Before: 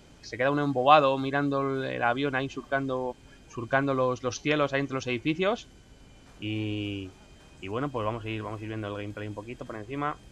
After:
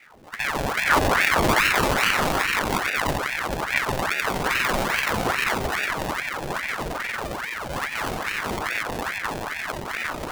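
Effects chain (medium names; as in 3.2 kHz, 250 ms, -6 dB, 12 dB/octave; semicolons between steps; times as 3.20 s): in parallel at -1.5 dB: compression, threshold -34 dBFS, peak gain reduction 20 dB; on the sum: distance through air 120 m; on a send: echo with a slow build-up 89 ms, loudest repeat 5, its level -5.5 dB; on the sum: decimation with a swept rate 40×, swing 60% 0.35 Hz; buffer glitch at 4.45/6.87 s, samples 2048, times 6; ring modulator with a swept carrier 1.2 kHz, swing 80%, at 2.4 Hz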